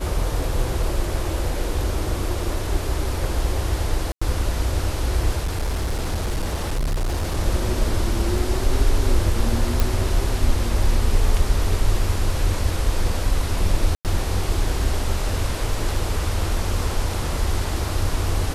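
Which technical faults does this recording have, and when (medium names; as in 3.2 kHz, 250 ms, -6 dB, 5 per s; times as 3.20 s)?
4.12–4.21 s: dropout 95 ms
5.44–7.38 s: clipped -19 dBFS
9.80 s: pop
13.95–14.05 s: dropout 98 ms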